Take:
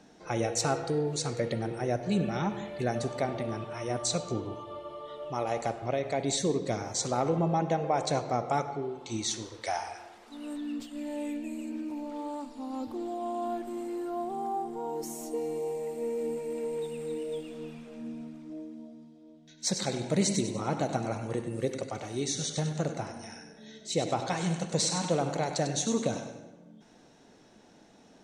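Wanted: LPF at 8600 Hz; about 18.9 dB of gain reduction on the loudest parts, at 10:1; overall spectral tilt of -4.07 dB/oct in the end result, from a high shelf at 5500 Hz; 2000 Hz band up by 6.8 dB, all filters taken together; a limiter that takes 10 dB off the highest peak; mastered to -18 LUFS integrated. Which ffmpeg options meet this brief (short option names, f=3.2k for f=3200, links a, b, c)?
-af "lowpass=8.6k,equalizer=f=2k:t=o:g=7.5,highshelf=f=5.5k:g=8.5,acompressor=threshold=-42dB:ratio=10,volume=28.5dB,alimiter=limit=-7dB:level=0:latency=1"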